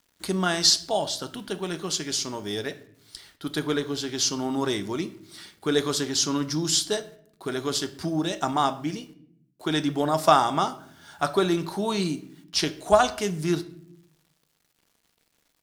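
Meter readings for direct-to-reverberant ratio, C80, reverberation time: 10.0 dB, 19.5 dB, 0.65 s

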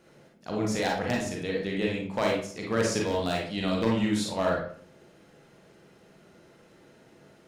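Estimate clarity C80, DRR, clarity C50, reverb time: 8.0 dB, −2.0 dB, 2.0 dB, 0.55 s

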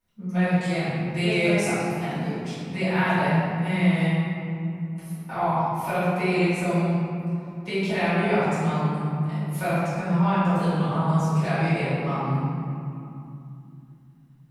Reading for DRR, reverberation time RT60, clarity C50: −15.5 dB, 2.7 s, −4.5 dB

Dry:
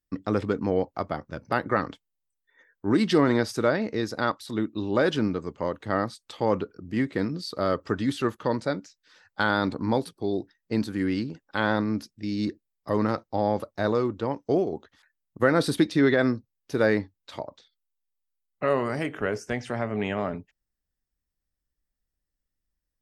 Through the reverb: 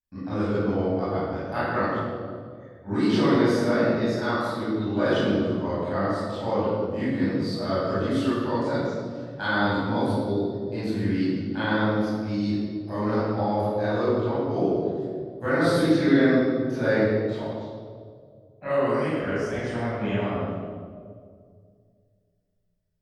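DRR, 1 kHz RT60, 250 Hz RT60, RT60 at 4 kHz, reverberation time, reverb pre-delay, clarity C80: −13.5 dB, 1.7 s, 2.4 s, 1.3 s, 2.1 s, 20 ms, −1.0 dB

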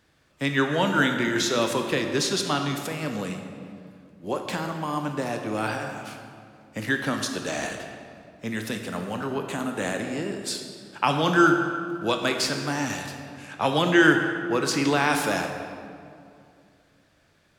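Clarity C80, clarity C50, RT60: 6.5 dB, 5.5 dB, 2.4 s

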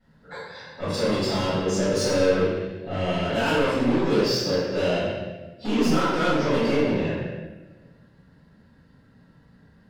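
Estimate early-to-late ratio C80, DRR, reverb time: 1.0 dB, −17.0 dB, 1.2 s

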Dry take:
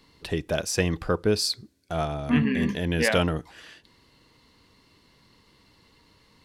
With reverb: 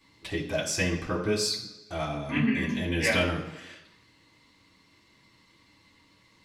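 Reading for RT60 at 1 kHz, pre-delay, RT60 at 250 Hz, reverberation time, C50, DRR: 1.1 s, 3 ms, 1.0 s, 1.1 s, 8.0 dB, −6.0 dB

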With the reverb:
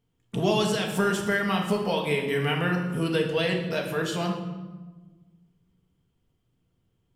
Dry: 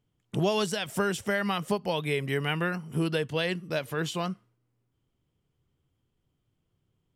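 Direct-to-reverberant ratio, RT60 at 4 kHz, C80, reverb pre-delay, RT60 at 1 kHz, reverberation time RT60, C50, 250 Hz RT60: 0.5 dB, 0.85 s, 7.5 dB, 4 ms, 1.1 s, 1.3 s, 5.5 dB, 1.9 s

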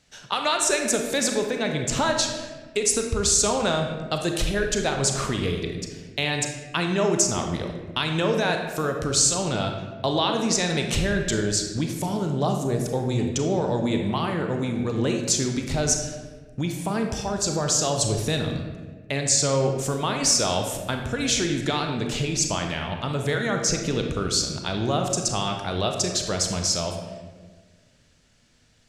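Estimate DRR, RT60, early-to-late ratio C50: 3.0 dB, 1.5 s, 4.5 dB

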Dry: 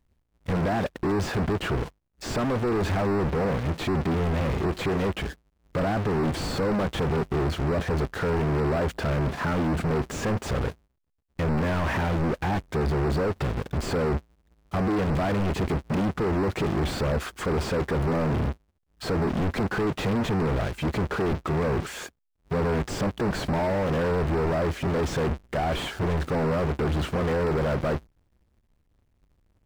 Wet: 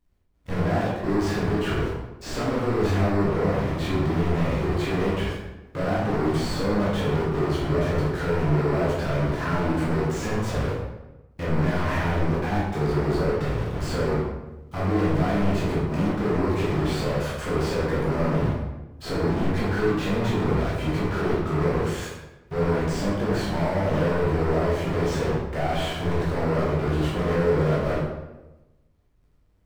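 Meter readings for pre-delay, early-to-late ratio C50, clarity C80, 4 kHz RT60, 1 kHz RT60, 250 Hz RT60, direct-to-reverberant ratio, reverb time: 11 ms, 0.0 dB, 3.5 dB, 0.70 s, 0.95 s, 1.2 s, −7.0 dB, 1.0 s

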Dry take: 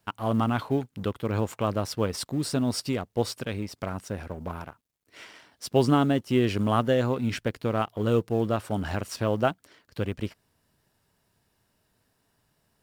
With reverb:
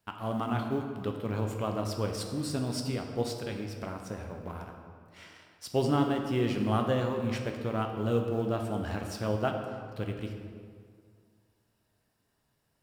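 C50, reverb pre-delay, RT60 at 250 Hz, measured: 5.0 dB, 9 ms, 2.2 s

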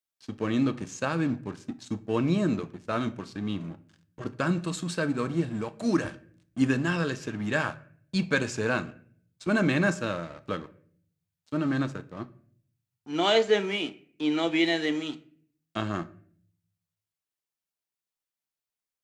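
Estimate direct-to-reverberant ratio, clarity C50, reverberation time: 11.5 dB, 18.0 dB, 0.55 s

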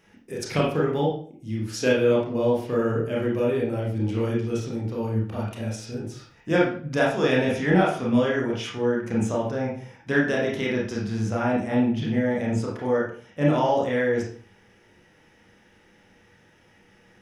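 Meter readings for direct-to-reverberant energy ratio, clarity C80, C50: −4.5 dB, 8.5 dB, 3.0 dB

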